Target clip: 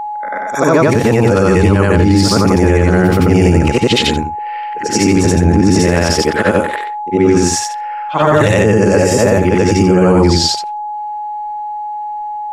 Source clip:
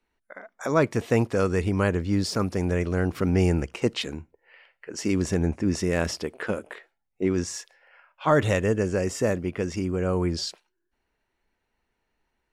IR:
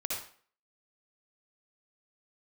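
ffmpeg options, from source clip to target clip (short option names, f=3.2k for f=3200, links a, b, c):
-af "afftfilt=real='re':imag='-im':win_size=8192:overlap=0.75,aeval=exprs='val(0)+0.00708*sin(2*PI*840*n/s)':c=same,alimiter=level_in=24.5dB:limit=-1dB:release=50:level=0:latency=1,volume=-1dB"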